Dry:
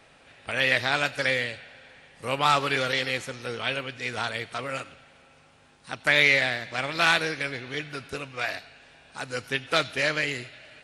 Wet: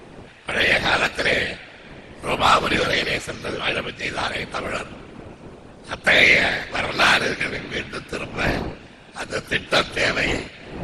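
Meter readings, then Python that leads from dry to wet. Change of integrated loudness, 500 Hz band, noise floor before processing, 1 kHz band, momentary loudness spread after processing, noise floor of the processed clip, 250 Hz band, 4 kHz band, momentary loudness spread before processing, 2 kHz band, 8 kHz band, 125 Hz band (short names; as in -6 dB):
+5.5 dB, +5.5 dB, -57 dBFS, +5.5 dB, 16 LU, -44 dBFS, +8.0 dB, +5.5 dB, 14 LU, +5.5 dB, +5.5 dB, +5.5 dB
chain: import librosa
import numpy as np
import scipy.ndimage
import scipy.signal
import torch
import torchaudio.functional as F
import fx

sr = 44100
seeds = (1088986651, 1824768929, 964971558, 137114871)

y = fx.dmg_wind(x, sr, seeds[0], corner_hz=440.0, level_db=-42.0)
y = fx.whisperise(y, sr, seeds[1])
y = y * librosa.db_to_amplitude(5.5)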